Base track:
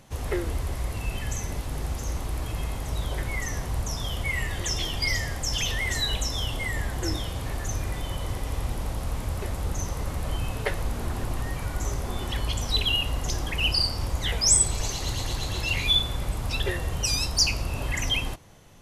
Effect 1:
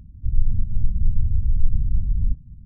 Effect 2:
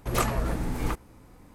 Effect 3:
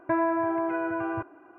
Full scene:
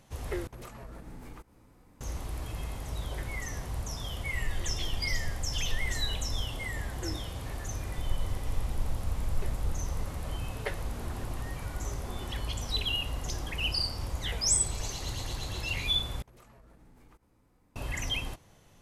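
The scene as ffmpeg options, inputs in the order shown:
-filter_complex "[2:a]asplit=2[a][b];[1:a]asplit=2[c][d];[0:a]volume=-6.5dB[e];[a]acompressor=threshold=-31dB:ratio=12:attack=0.8:release=351:knee=1:detection=peak[f];[d]acrusher=samples=6:mix=1:aa=0.000001[g];[b]acompressor=threshold=-39dB:ratio=6:attack=3.2:release=140:knee=1:detection=peak[h];[e]asplit=3[i][j][k];[i]atrim=end=0.474[l];[f]atrim=end=1.54,asetpts=PTS-STARTPTS,volume=-7dB[m];[j]atrim=start=2.006:end=16.224[n];[h]atrim=end=1.54,asetpts=PTS-STARTPTS,volume=-15dB[o];[k]atrim=start=17.756[p];[c]atrim=end=2.65,asetpts=PTS-STARTPTS,volume=-16dB,afade=t=in:d=0.004:c=hsin,afade=t=out:st=2.646:d=0.004:c=hsin,adelay=180369S[q];[g]atrim=end=2.65,asetpts=PTS-STARTPTS,volume=-14dB,afade=t=in:d=0.004:c=hsin,afade=t=out:st=2.646:d=0.004:c=hsin,adelay=7730[r];[l][m]acrossfade=d=0.004:c1=hsin:c2=hsin[s];[s][n]acrossfade=d=0.004:c1=hsin:c2=hsin[t];[t][o]acrossfade=d=0.004:c1=hsin:c2=hsin[u];[u][p]acrossfade=d=0.004:c1=hsin:c2=hsin[v];[v][q][r]amix=inputs=3:normalize=0"

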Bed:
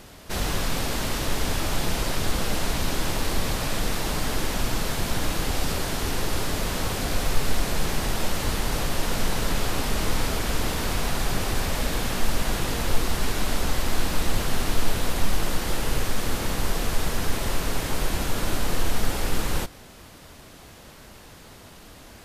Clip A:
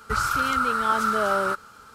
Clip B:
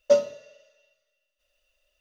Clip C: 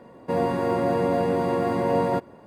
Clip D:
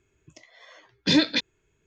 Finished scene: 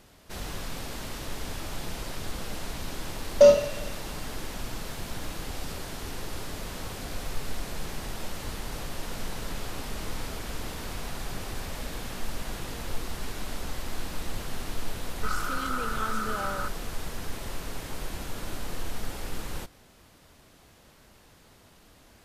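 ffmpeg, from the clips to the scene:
-filter_complex "[0:a]volume=-10dB[a];[2:a]alimiter=level_in=17dB:limit=-1dB:release=50:level=0:latency=1[b];[1:a]aecho=1:1:4:0.58[c];[b]atrim=end=2,asetpts=PTS-STARTPTS,volume=-5.5dB,afade=t=in:d=0.004:c=hsin,afade=t=out:st=1.996:d=0.004:c=hsin,adelay=3310[d];[c]atrim=end=1.94,asetpts=PTS-STARTPTS,volume=-9.5dB,afade=t=in:d=0.004:c=hsin,afade=t=out:st=1.936:d=0.004:c=hsin,adelay=15130[e];[a][d][e]amix=inputs=3:normalize=0"

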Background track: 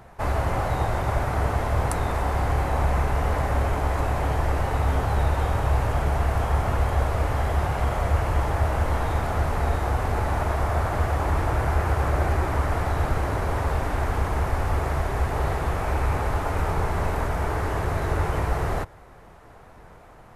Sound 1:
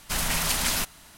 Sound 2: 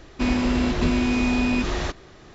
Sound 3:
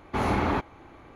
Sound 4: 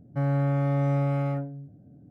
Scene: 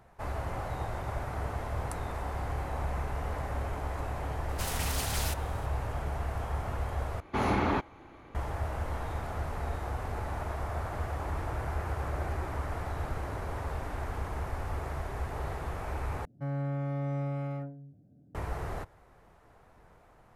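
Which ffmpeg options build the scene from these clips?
-filter_complex "[0:a]volume=-11dB[a];[1:a]asoftclip=type=tanh:threshold=-22.5dB[b];[a]asplit=3[c][d][e];[c]atrim=end=7.204[f];[3:a]atrim=end=1.15,asetpts=PTS-STARTPTS,volume=-2.5dB[g];[d]atrim=start=8.346:end=16.254[h];[4:a]atrim=end=2.1,asetpts=PTS-STARTPTS,volume=-8.5dB[i];[e]atrim=start=18.346[j];[b]atrim=end=1.17,asetpts=PTS-STARTPTS,volume=-7dB,afade=t=in:d=0.004:c=hsin,afade=t=out:st=1.166:d=0.004:c=hsin,adelay=198009S[k];[f][g]acrossfade=d=0.004:c1=hsin:c2=hsin[l];[l][h]acrossfade=d=0.004:c1=hsin:c2=hsin[m];[m][i]acrossfade=d=0.004:c1=hsin:c2=hsin[n];[n][j]acrossfade=d=0.004:c1=hsin:c2=hsin[o];[o][k]amix=inputs=2:normalize=0"

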